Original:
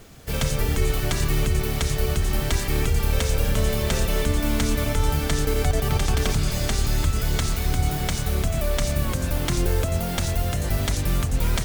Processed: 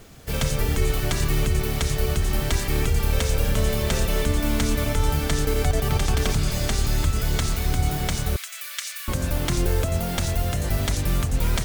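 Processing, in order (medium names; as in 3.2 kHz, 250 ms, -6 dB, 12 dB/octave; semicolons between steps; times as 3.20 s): 8.36–9.08 s: high-pass 1.5 kHz 24 dB/octave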